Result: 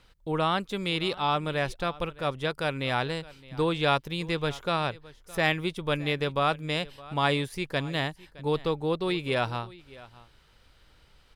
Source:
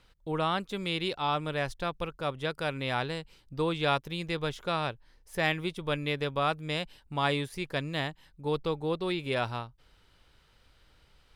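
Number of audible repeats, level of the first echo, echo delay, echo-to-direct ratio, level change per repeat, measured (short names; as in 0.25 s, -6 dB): 1, -20.5 dB, 0.615 s, -20.5 dB, no steady repeat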